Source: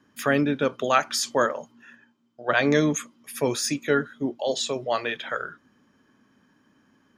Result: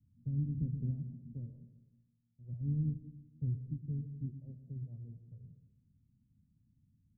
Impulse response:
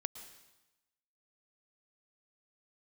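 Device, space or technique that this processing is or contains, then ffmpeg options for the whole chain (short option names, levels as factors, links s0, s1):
club heard from the street: -filter_complex "[0:a]asettb=1/sr,asplit=3[s0][s1][s2];[s0]atrim=end=0.574[s3];[s1]atrim=start=0.57:end=1.33,asetpts=PTS-STARTPTS,afade=t=in:d=0.004:c=qsin,afade=t=out:st=0.756:d=0.004:c=qsin,equalizer=f=220:t=o:w=2.9:g=14[s4];[s2]atrim=start=1.326[s5];[s3][s4]acrossfade=d=0.004:c1=hsin:c2=qsin[s6];[s6][s5]acrossfade=d=0.004:c1=qsin:c2=hsin,alimiter=limit=0.282:level=0:latency=1:release=80,lowpass=f=120:w=0.5412,lowpass=f=120:w=1.3066[s7];[1:a]atrim=start_sample=2205[s8];[s7][s8]afir=irnorm=-1:irlink=0,volume=2.66"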